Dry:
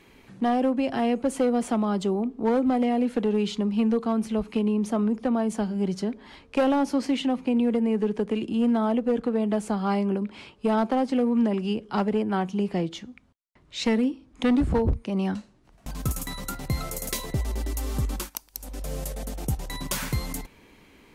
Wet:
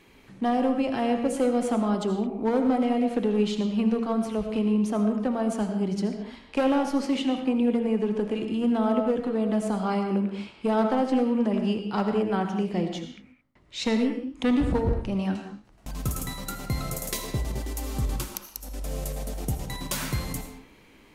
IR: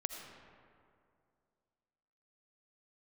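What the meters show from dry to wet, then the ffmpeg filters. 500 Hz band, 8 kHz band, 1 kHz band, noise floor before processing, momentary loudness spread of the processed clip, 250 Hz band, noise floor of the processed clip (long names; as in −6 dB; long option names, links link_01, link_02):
0.0 dB, −0.5 dB, −0.5 dB, −58 dBFS, 10 LU, −0.5 dB, −55 dBFS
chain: -filter_complex "[0:a]bandreject=frequency=76.76:width_type=h:width=4,bandreject=frequency=153.52:width_type=h:width=4,bandreject=frequency=230.28:width_type=h:width=4,bandreject=frequency=307.04:width_type=h:width=4,bandreject=frequency=383.8:width_type=h:width=4,bandreject=frequency=460.56:width_type=h:width=4,bandreject=frequency=537.32:width_type=h:width=4,bandreject=frequency=614.08:width_type=h:width=4,bandreject=frequency=690.84:width_type=h:width=4,bandreject=frequency=767.6:width_type=h:width=4,bandreject=frequency=844.36:width_type=h:width=4,bandreject=frequency=921.12:width_type=h:width=4,bandreject=frequency=997.88:width_type=h:width=4,bandreject=frequency=1074.64:width_type=h:width=4,bandreject=frequency=1151.4:width_type=h:width=4,bandreject=frequency=1228.16:width_type=h:width=4,bandreject=frequency=1304.92:width_type=h:width=4,bandreject=frequency=1381.68:width_type=h:width=4,bandreject=frequency=1458.44:width_type=h:width=4,bandreject=frequency=1535.2:width_type=h:width=4,bandreject=frequency=1611.96:width_type=h:width=4,bandreject=frequency=1688.72:width_type=h:width=4,bandreject=frequency=1765.48:width_type=h:width=4,bandreject=frequency=1842.24:width_type=h:width=4,bandreject=frequency=1919:width_type=h:width=4,bandreject=frequency=1995.76:width_type=h:width=4,bandreject=frequency=2072.52:width_type=h:width=4,bandreject=frequency=2149.28:width_type=h:width=4,bandreject=frequency=2226.04:width_type=h:width=4[link_01];[1:a]atrim=start_sample=2205,afade=type=out:start_time=0.28:duration=0.01,atrim=end_sample=12789[link_02];[link_01][link_02]afir=irnorm=-1:irlink=0"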